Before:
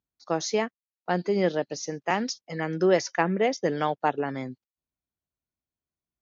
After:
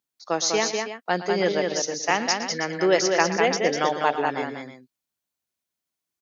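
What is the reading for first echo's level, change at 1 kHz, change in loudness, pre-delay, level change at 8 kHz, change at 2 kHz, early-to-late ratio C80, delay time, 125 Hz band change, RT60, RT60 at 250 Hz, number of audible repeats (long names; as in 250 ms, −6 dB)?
−14.0 dB, +4.5 dB, +4.0 dB, no reverb audible, can't be measured, +7.0 dB, no reverb audible, 115 ms, −2.5 dB, no reverb audible, no reverb audible, 3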